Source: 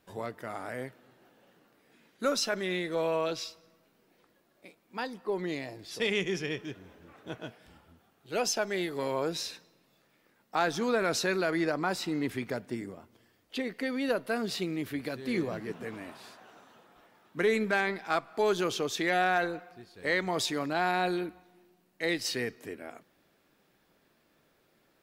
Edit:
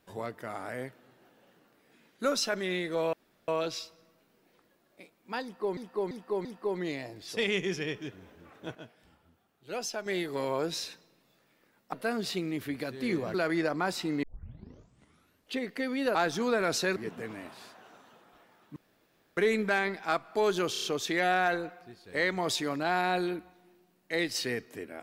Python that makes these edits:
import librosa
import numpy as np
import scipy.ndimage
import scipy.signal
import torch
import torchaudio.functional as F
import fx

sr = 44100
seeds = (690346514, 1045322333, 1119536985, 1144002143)

y = fx.edit(x, sr, fx.insert_room_tone(at_s=3.13, length_s=0.35),
    fx.repeat(start_s=5.08, length_s=0.34, count=4),
    fx.clip_gain(start_s=7.38, length_s=1.31, db=-6.0),
    fx.swap(start_s=10.56, length_s=0.81, other_s=14.18, other_length_s=1.41),
    fx.tape_start(start_s=12.26, length_s=1.31),
    fx.insert_room_tone(at_s=17.39, length_s=0.61),
    fx.stutter(start_s=18.74, slice_s=0.03, count=5), tone=tone)